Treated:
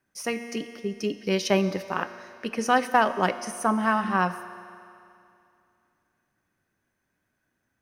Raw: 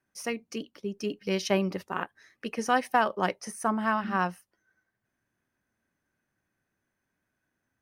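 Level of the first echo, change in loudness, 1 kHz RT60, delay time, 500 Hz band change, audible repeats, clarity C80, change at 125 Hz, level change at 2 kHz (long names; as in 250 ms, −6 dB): no echo audible, +3.5 dB, 2.6 s, no echo audible, +4.0 dB, no echo audible, 13.0 dB, +3.5 dB, +4.0 dB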